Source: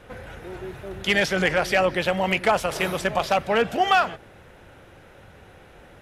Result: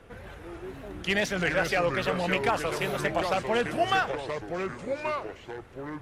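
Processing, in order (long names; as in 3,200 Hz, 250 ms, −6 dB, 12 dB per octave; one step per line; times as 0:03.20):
phase shifter 0.86 Hz, delay 2.6 ms, feedback 21%
tape wow and flutter 120 cents
delay with pitch and tempo change per echo 112 ms, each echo −4 semitones, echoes 2, each echo −6 dB
level −6 dB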